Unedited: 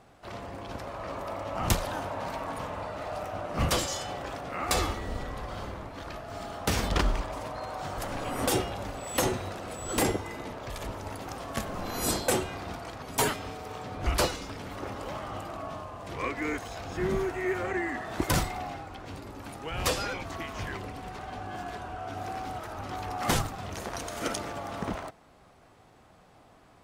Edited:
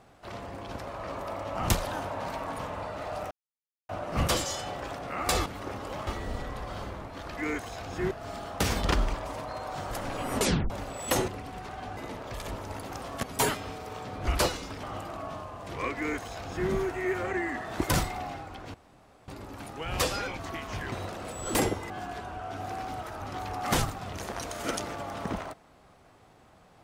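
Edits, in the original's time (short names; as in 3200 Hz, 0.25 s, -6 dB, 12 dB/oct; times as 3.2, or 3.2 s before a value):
3.31 insert silence 0.58 s
8.43 tape stop 0.34 s
9.35–10.33 swap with 20.78–21.47
11.59–13.02 cut
14.62–15.23 move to 4.88
16.36–17.1 copy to 6.18
19.14 insert room tone 0.54 s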